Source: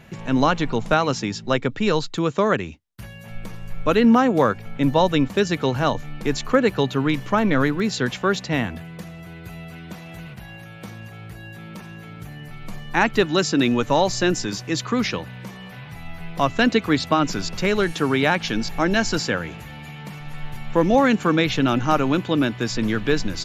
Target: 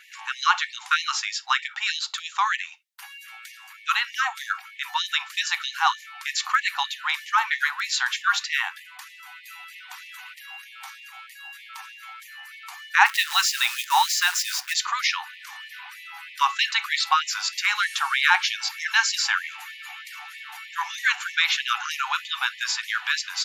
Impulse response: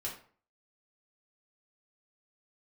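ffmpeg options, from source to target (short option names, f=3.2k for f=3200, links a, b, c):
-filter_complex "[0:a]asplit=3[a][b][c];[a]afade=t=out:st=13.05:d=0.02[d];[b]acrusher=bits=6:dc=4:mix=0:aa=0.000001,afade=t=in:st=13.05:d=0.02,afade=t=out:st=14.72:d=0.02[e];[c]afade=t=in:st=14.72:d=0.02[f];[d][e][f]amix=inputs=3:normalize=0,asplit=2[g][h];[1:a]atrim=start_sample=2205,atrim=end_sample=4410,asetrate=52920,aresample=44100[i];[h][i]afir=irnorm=-1:irlink=0,volume=-8.5dB[j];[g][j]amix=inputs=2:normalize=0,afftfilt=real='re*gte(b*sr/1024,720*pow(1800/720,0.5+0.5*sin(2*PI*3.2*pts/sr)))':imag='im*gte(b*sr/1024,720*pow(1800/720,0.5+0.5*sin(2*PI*3.2*pts/sr)))':win_size=1024:overlap=0.75,volume=2.5dB"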